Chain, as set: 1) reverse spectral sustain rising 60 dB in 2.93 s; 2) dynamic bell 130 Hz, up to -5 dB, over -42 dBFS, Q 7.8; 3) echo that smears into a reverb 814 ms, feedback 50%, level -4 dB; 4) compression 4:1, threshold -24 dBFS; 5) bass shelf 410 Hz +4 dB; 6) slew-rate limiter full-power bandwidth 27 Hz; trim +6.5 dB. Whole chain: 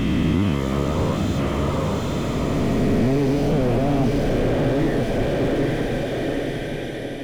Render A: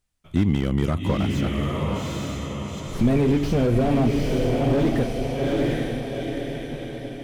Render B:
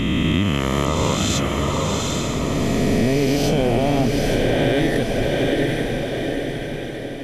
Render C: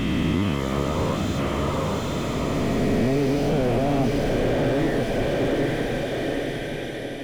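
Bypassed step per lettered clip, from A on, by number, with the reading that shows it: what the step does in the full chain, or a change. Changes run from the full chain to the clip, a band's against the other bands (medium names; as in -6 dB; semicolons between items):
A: 1, 2 kHz band -1.5 dB; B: 6, distortion -7 dB; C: 5, loudness change -2.0 LU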